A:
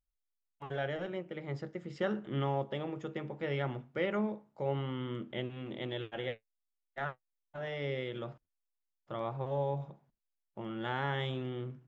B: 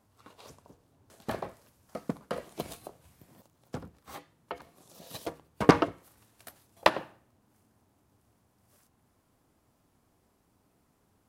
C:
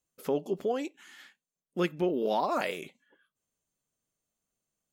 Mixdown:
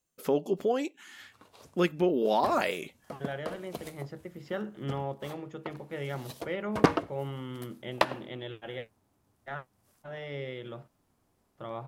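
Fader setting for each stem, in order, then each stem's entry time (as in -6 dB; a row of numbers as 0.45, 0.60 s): -1.5, -3.0, +2.5 dB; 2.50, 1.15, 0.00 s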